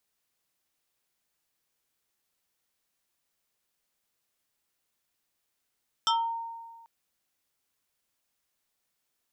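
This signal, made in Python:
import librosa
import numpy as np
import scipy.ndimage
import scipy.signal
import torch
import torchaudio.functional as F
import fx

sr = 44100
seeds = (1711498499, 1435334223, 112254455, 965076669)

y = fx.fm2(sr, length_s=0.79, level_db=-20.5, carrier_hz=920.0, ratio=2.43, index=2.3, index_s=0.32, decay_s=1.57, shape='exponential')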